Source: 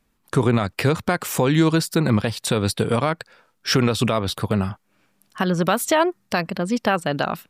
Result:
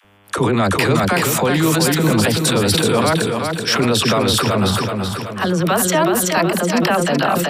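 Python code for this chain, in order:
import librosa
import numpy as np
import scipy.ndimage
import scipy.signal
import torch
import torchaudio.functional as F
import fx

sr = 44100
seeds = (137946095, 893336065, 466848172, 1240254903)

p1 = fx.low_shelf(x, sr, hz=100.0, db=-10.5)
p2 = fx.over_compress(p1, sr, threshold_db=-24.0, ratio=-1.0)
p3 = p1 + F.gain(torch.from_numpy(p2), 0.5).numpy()
p4 = fx.dmg_buzz(p3, sr, base_hz=100.0, harmonics=35, level_db=-51.0, tilt_db=-3, odd_only=False)
p5 = fx.dispersion(p4, sr, late='lows', ms=48.0, hz=490.0)
p6 = p5 + fx.echo_feedback(p5, sr, ms=377, feedback_pct=47, wet_db=-5.0, dry=0)
p7 = fx.sustainer(p6, sr, db_per_s=24.0)
y = F.gain(torch.from_numpy(p7), -1.0).numpy()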